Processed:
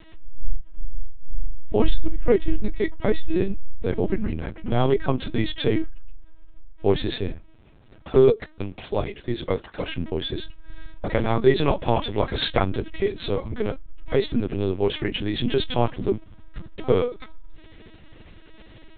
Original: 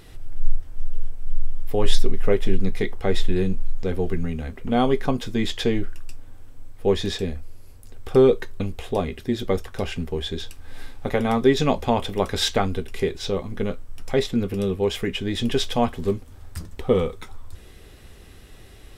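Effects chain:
0:07.33–0:09.87: high-pass filter 72 Hz → 250 Hz 6 dB per octave
linear-prediction vocoder at 8 kHz pitch kept

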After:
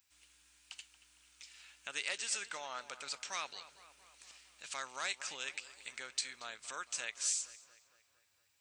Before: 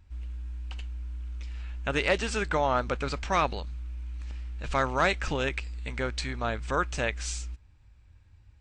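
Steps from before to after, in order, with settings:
high-pass filter 89 Hz 12 dB per octave
high-shelf EQ 7,400 Hz +6.5 dB
in parallel at +3 dB: downward compressor, threshold −40 dBFS, peak gain reduction 19 dB
on the sum: first difference
feedback echo with a low-pass in the loop 229 ms, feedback 61%, low-pass 3,300 Hz, level −14.5 dB
level −2.5 dB

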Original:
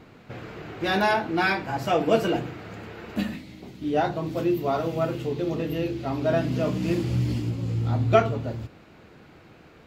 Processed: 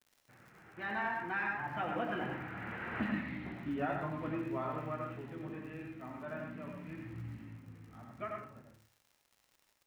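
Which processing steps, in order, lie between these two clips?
source passing by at 0:03.20, 19 m/s, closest 6.3 metres
high-pass filter 190 Hz 6 dB per octave
downward expander −54 dBFS
parametric band 480 Hz −11 dB 1.4 octaves
downward compressor, threshold −39 dBFS, peak gain reduction 10.5 dB
transistor ladder low-pass 2,300 Hz, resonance 30%
surface crackle 84 per second −64 dBFS
on a send: convolution reverb RT60 0.45 s, pre-delay 77 ms, DRR 2 dB
on the sum: level +12 dB

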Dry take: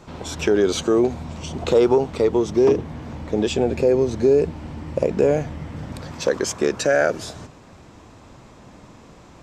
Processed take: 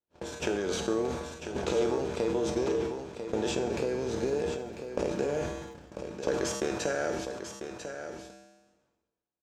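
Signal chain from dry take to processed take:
compressor on every frequency bin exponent 0.6
hum removal 199.7 Hz, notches 2
noise gate −21 dBFS, range −57 dB
downward compressor 5 to 1, threshold −20 dBFS, peak gain reduction 10 dB
0:03.68–0:05.36: surface crackle 80 per second −45 dBFS
tuned comb filter 66 Hz, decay 0.71 s, harmonics odd, mix 80%
pitch vibrato 0.95 Hz 27 cents
single-tap delay 995 ms −9 dB
level that may fall only so fast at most 47 dB per second
level +3.5 dB

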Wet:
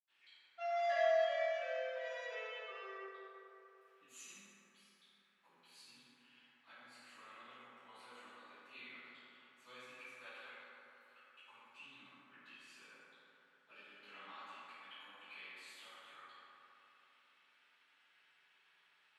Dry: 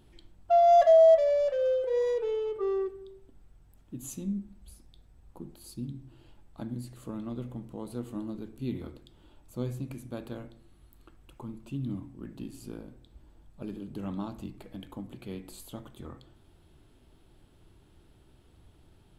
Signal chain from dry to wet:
four-pole ladder band-pass 2,600 Hz, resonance 40%
convolution reverb RT60 3.3 s, pre-delay 77 ms, DRR −60 dB
level +14 dB

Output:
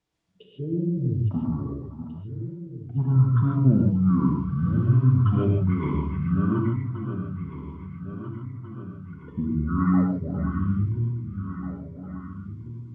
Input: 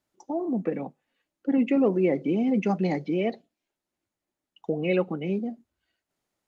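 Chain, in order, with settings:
feedback delay that plays each chunk backwards 423 ms, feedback 66%, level −10 dB
pitch vibrato 6 Hz 11 cents
reverb whose tail is shaped and stops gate 90 ms rising, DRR −0.5 dB
wrong playback speed 15 ips tape played at 7.5 ips
level −1 dB

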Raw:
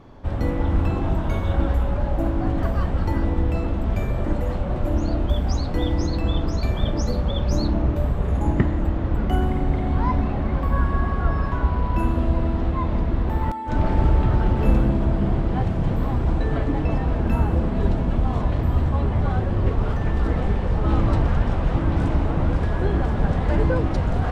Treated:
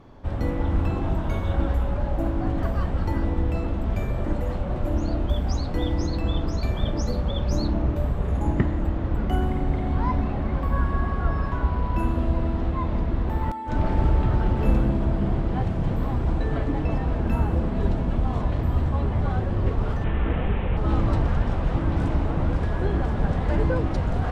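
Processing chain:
0:20.04–0:20.77: linear delta modulator 16 kbit/s, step −28 dBFS
level −2.5 dB

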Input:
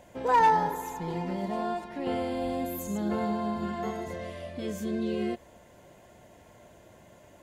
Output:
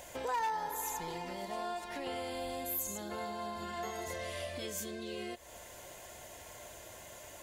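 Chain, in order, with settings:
high-shelf EQ 3,500 Hz +11.5 dB
downward compressor 4 to 1, threshold −39 dBFS, peak gain reduction 17.5 dB
parametric band 190 Hz −11.5 dB 1.8 octaves
level +4.5 dB

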